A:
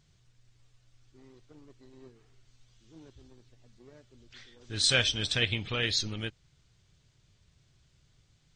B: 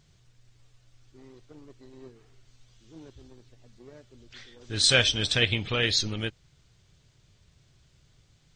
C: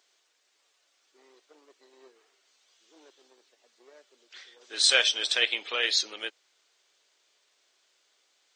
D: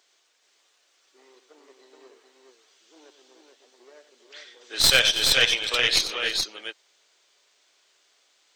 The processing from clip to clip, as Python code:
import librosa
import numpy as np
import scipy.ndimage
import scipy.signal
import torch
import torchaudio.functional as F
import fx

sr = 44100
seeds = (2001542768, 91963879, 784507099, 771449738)

y1 = fx.peak_eq(x, sr, hz=520.0, db=2.0, octaves=1.4)
y1 = F.gain(torch.from_numpy(y1), 4.0).numpy()
y2 = scipy.signal.sosfilt(scipy.signal.bessel(6, 600.0, 'highpass', norm='mag', fs=sr, output='sos'), y1)
y3 = fx.tracing_dist(y2, sr, depth_ms=0.031)
y3 = fx.echo_multitap(y3, sr, ms=(93, 323, 426), db=(-11.0, -18.0, -4.0))
y3 = F.gain(torch.from_numpy(y3), 3.5).numpy()